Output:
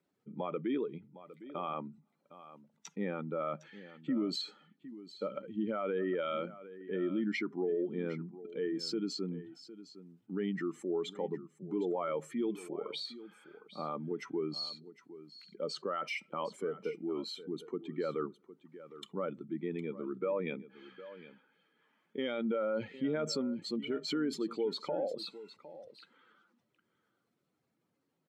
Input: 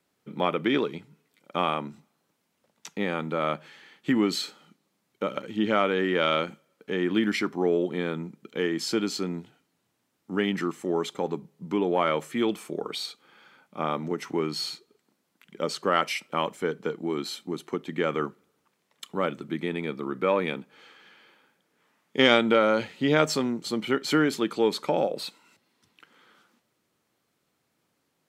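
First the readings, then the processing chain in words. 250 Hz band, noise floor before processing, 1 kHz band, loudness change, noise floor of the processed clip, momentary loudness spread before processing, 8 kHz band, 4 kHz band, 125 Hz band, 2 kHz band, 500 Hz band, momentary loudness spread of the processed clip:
-8.5 dB, -75 dBFS, -13.0 dB, -9.5 dB, -81 dBFS, 12 LU, -12.0 dB, -11.0 dB, -10.0 dB, -15.0 dB, -9.0 dB, 18 LU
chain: spectral contrast enhancement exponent 1.7; peak limiter -18.5 dBFS, peak gain reduction 11.5 dB; delay 759 ms -15.5 dB; trim -7 dB

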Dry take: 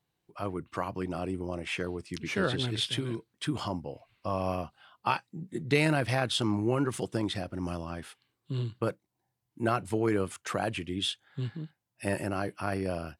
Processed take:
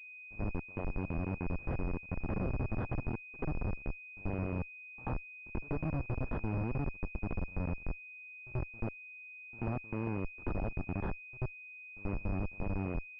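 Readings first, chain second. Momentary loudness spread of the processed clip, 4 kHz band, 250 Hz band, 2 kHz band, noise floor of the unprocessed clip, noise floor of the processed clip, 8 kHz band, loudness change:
7 LU, under -35 dB, -6.5 dB, -7.5 dB, -82 dBFS, -51 dBFS, under -35 dB, -7.0 dB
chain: square wave that keeps the level; compression 2:1, threshold -32 dBFS, peak gain reduction 9 dB; Schmitt trigger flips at -30.5 dBFS; pre-echo 85 ms -21 dB; class-D stage that switches slowly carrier 2.5 kHz; trim +1 dB

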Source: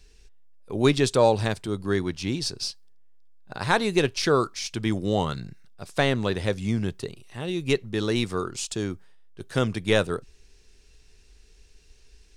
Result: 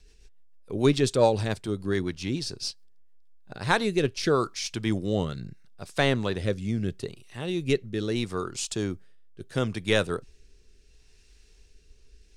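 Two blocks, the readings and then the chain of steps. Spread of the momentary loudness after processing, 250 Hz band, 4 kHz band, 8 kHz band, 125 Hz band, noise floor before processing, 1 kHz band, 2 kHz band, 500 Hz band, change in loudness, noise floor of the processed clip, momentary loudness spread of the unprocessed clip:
12 LU, -1.5 dB, -2.5 dB, -2.0 dB, -1.5 dB, -55 dBFS, -3.0 dB, -2.0 dB, -2.0 dB, -2.0 dB, -57 dBFS, 13 LU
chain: rotary cabinet horn 7 Hz, later 0.75 Hz, at 3.06 s

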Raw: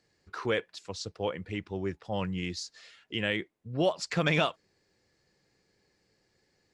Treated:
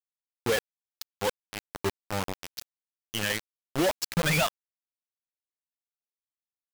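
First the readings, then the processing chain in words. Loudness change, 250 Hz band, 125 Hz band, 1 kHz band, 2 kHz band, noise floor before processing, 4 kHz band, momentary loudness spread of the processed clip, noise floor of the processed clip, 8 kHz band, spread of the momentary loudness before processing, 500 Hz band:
+2.0 dB, -0.5 dB, 0.0 dB, +2.0 dB, +2.0 dB, -74 dBFS, +2.5 dB, 17 LU, under -85 dBFS, +9.0 dB, 12 LU, +0.5 dB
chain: expander on every frequency bin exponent 2; sine folder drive 6 dB, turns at -17 dBFS; bit crusher 4-bit; trim -4 dB

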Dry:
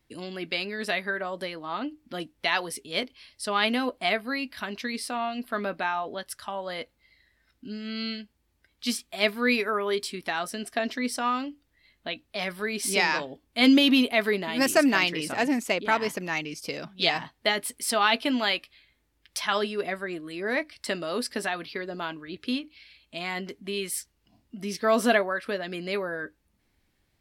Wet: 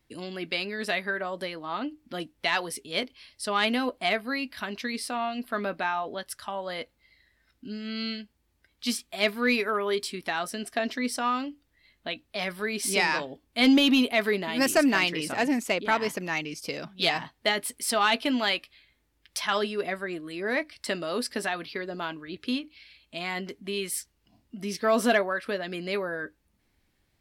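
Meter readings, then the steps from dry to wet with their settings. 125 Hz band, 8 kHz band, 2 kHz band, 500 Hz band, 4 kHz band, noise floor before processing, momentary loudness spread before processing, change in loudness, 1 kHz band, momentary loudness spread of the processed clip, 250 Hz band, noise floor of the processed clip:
0.0 dB, 0.0 dB, -0.5 dB, -0.5 dB, -1.0 dB, -72 dBFS, 13 LU, -0.5 dB, -0.5 dB, 13 LU, -0.5 dB, -72 dBFS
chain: saturation -11 dBFS, distortion -23 dB

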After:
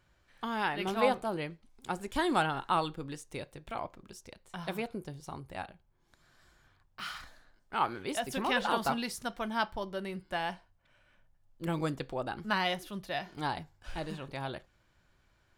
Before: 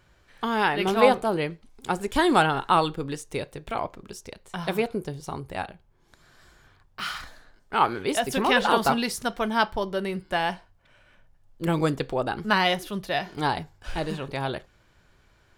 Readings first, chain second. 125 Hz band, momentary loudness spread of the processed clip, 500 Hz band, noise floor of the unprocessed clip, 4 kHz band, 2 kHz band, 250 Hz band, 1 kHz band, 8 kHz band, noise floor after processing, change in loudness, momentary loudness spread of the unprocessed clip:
-8.5 dB, 15 LU, -10.0 dB, -61 dBFS, -8.5 dB, -8.5 dB, -8.5 dB, -8.5 dB, -8.5 dB, -70 dBFS, -9.0 dB, 15 LU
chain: peaking EQ 430 Hz -6 dB 0.21 oct; trim -8.5 dB

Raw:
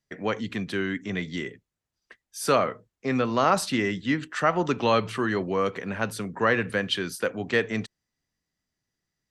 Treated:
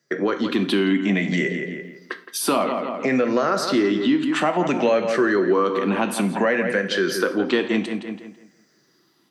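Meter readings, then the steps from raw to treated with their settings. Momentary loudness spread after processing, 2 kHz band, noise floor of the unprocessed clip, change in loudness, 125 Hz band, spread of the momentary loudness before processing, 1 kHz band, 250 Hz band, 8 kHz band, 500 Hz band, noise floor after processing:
9 LU, +4.0 dB, under -85 dBFS, +5.0 dB, +2.0 dB, 9 LU, +2.0 dB, +8.0 dB, +5.0 dB, +6.0 dB, -62 dBFS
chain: drifting ripple filter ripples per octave 0.56, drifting -0.58 Hz, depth 9 dB; level rider gain up to 9.5 dB; on a send: filtered feedback delay 167 ms, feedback 30%, low-pass 3.8 kHz, level -12 dB; on the sum: compression 3:1, threshold -34 dBFS, peak gain reduction 18.5 dB; high-pass 210 Hz 24 dB/octave; bass shelf 280 Hz +8 dB; gated-style reverb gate 150 ms falling, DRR 8.5 dB; in parallel at +0.5 dB: peak limiter -25.5 dBFS, peak gain reduction 8.5 dB; on the sum: treble shelf 5.5 kHz -5 dB; trim +5.5 dB

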